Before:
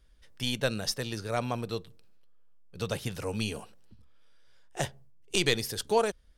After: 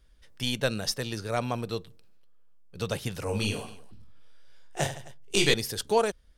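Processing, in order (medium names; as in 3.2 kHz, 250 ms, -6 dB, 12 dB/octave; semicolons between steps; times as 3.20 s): 3.24–5.54 s: reverse bouncing-ball echo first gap 20 ms, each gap 1.5×, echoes 5; trim +1.5 dB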